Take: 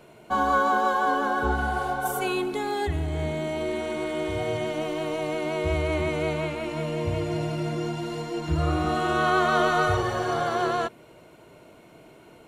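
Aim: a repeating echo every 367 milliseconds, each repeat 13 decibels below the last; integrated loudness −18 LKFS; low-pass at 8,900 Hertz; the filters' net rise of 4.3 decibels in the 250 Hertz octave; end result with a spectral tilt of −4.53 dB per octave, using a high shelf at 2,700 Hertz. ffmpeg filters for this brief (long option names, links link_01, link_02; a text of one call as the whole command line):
ffmpeg -i in.wav -af "lowpass=8900,equalizer=frequency=250:width_type=o:gain=6.5,highshelf=frequency=2700:gain=4,aecho=1:1:367|734|1101:0.224|0.0493|0.0108,volume=6.5dB" out.wav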